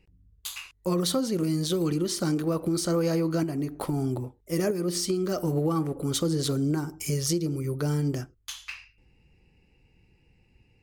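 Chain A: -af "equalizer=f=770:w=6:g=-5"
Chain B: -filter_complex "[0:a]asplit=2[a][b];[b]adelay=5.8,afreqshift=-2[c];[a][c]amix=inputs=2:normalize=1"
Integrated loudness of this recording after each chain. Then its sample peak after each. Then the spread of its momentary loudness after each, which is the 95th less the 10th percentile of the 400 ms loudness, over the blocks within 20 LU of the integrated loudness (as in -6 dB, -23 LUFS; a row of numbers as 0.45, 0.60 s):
-28.0, -31.5 LUFS; -14.5, -17.5 dBFS; 11, 12 LU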